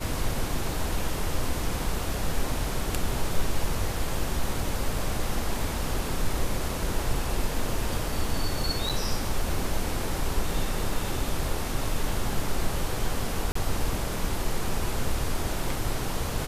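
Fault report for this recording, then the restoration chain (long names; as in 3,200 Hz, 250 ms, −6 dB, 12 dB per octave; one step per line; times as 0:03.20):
0:08.89–0:08.90: drop-out 6.6 ms
0:13.52–0:13.55: drop-out 34 ms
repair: repair the gap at 0:08.89, 6.6 ms
repair the gap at 0:13.52, 34 ms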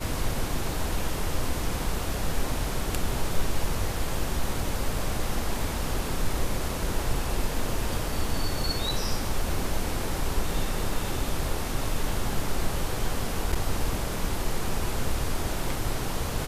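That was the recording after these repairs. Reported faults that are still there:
none of them is left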